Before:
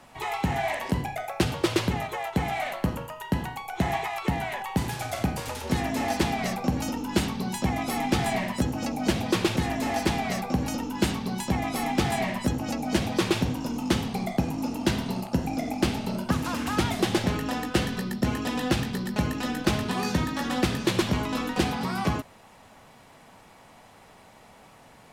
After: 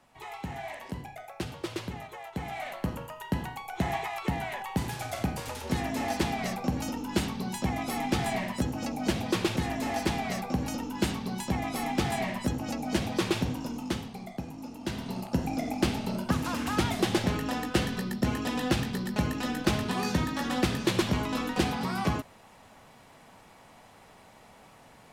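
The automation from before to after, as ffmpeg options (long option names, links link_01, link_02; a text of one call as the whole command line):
ffmpeg -i in.wav -af "volume=6dB,afade=type=in:start_time=2.26:duration=0.84:silence=0.421697,afade=type=out:start_time=13.56:duration=0.59:silence=0.398107,afade=type=in:start_time=14.8:duration=0.6:silence=0.334965" out.wav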